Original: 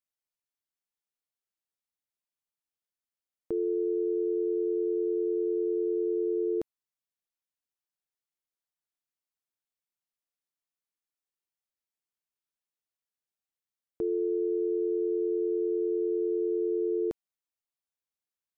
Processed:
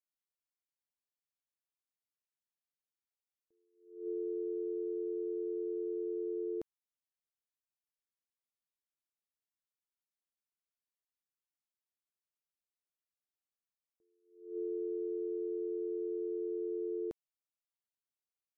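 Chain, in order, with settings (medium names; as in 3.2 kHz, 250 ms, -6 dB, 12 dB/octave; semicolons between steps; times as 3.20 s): attacks held to a fixed rise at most 110 dB/s; trim -8.5 dB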